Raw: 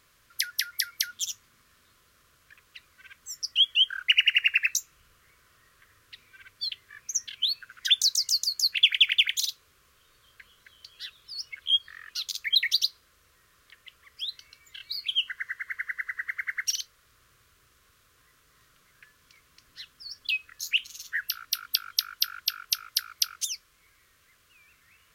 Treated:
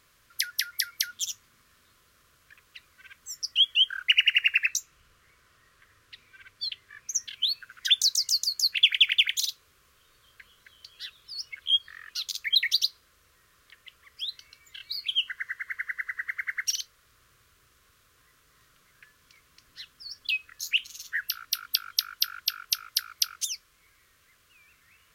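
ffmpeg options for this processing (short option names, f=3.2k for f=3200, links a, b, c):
-filter_complex "[0:a]asettb=1/sr,asplit=3[a][b][c];[a]atrim=end=4.644[d];[b]atrim=start=4.64:end=7.09,asetpts=PTS-STARTPTS,afade=t=in:d=0.004:c=qsin,afade=t=out:st=2.446:d=0.004:c=qsin,highshelf=f=11k:g=-8[e];[c]atrim=start=7.086[f];[d][e]acrossfade=d=0.004:c1=hsin:c2=qsin[g];[g][f]acrossfade=d=0.004:c1=qsin:c2=hsin"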